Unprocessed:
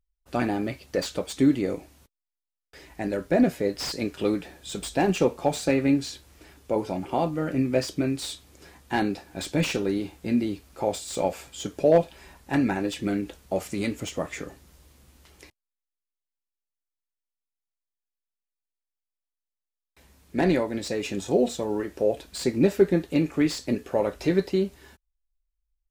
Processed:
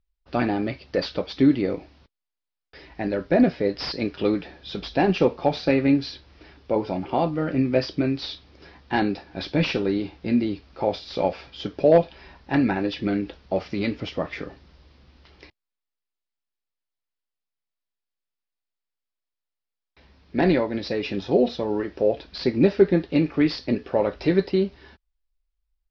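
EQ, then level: steep low-pass 5.3 kHz 72 dB/octave; +2.5 dB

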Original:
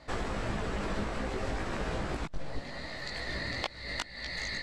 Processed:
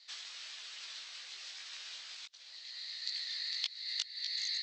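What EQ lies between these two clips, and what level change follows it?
Butterworth band-pass 5.2 kHz, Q 1.3; distance through air 120 m; treble shelf 5.8 kHz +5.5 dB; +7.5 dB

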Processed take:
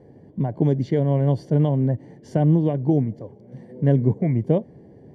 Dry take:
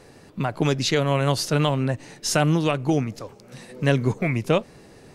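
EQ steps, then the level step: boxcar filter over 34 samples; high-pass 85 Hz; bass shelf 350 Hz +5.5 dB; 0.0 dB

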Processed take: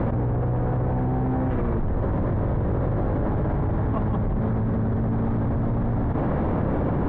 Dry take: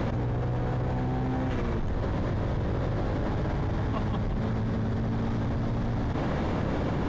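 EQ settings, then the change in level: low-pass 1.3 kHz 12 dB/octave; +5.0 dB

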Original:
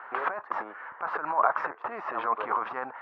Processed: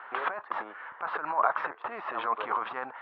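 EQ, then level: resonant low-pass 3.6 kHz, resonance Q 3.2; -2.5 dB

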